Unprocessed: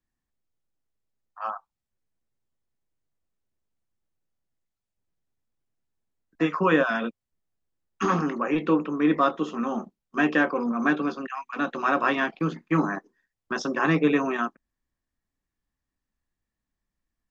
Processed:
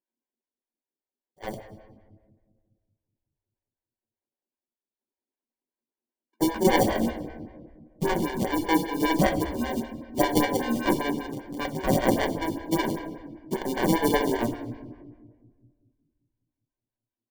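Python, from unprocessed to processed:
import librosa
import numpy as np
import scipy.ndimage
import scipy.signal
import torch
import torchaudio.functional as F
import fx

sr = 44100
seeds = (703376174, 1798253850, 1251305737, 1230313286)

y = fx.wiener(x, sr, points=41)
y = scipy.signal.sosfilt(scipy.signal.butter(16, 220.0, 'highpass', fs=sr, output='sos'), y)
y = fx.high_shelf(y, sr, hz=2800.0, db=11.5)
y = fx.notch(y, sr, hz=1300.0, q=24.0)
y = fx.sample_hold(y, sr, seeds[0], rate_hz=1300.0, jitter_pct=0)
y = fx.room_shoebox(y, sr, seeds[1], volume_m3=1500.0, walls='mixed', distance_m=1.1)
y = fx.stagger_phaser(y, sr, hz=5.1)
y = y * 10.0 ** (1.5 / 20.0)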